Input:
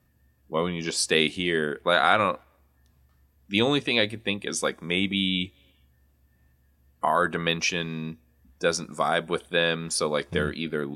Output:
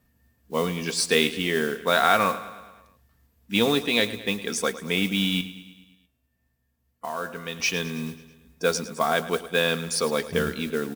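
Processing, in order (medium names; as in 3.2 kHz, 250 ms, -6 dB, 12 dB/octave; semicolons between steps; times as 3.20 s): comb 4.4 ms, depth 37%; modulation noise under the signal 18 dB; 5.41–7.60 s: feedback comb 130 Hz, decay 1.3 s, harmonics all, mix 70%; feedback delay 108 ms, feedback 59%, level -15.5 dB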